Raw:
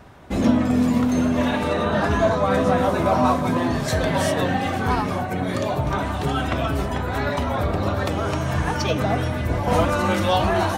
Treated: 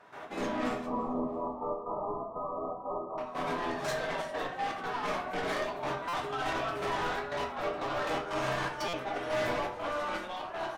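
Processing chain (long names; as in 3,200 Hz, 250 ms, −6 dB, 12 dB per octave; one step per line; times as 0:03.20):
high-pass filter 980 Hz 12 dB per octave
spectral tilt −4 dB per octave
brickwall limiter −19.5 dBFS, peak gain reduction 6.5 dB
compressor whose output falls as the input rises −35 dBFS, ratio −1
gate pattern ".x.xxx.xxx.x" 121 BPM −12 dB
soft clipping −36 dBFS, distortion −9 dB
0:00.86–0:03.18: linear-phase brick-wall low-pass 1,300 Hz
repeating echo 336 ms, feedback 40%, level −22 dB
convolution reverb RT60 0.45 s, pre-delay 6 ms, DRR 0.5 dB
buffer that repeats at 0:06.08/0:08.88, samples 256, times 8
level +3.5 dB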